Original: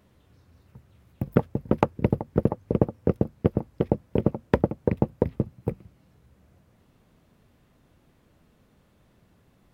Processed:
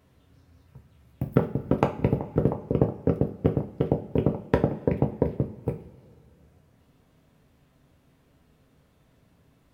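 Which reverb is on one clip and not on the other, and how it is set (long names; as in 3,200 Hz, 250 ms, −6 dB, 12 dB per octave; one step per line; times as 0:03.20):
coupled-rooms reverb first 0.34 s, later 2.3 s, from −20 dB, DRR 3.5 dB
level −2 dB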